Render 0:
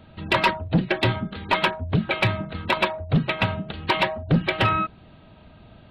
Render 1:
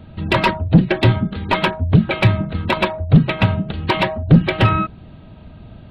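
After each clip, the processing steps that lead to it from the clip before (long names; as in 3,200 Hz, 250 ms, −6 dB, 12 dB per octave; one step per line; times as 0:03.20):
low-shelf EQ 360 Hz +9.5 dB
level +2 dB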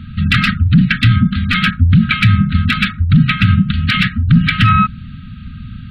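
linear-phase brick-wall band-stop 270–1,200 Hz
boost into a limiter +11 dB
level −1 dB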